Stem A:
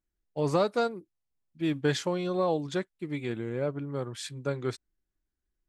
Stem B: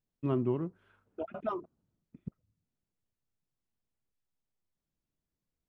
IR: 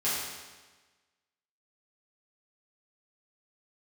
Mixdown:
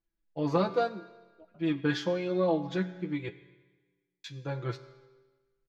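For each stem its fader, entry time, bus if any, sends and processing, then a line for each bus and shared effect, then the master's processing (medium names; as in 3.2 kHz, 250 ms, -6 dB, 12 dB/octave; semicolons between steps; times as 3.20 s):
0.0 dB, 0.00 s, muted 3.29–4.24 s, send -19.5 dB, boxcar filter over 5 samples; comb 6 ms, depth 95%
-15.5 dB, 0.20 s, no send, none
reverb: on, RT60 1.3 s, pre-delay 5 ms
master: flange 0.84 Hz, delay 8.7 ms, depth 2 ms, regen +37%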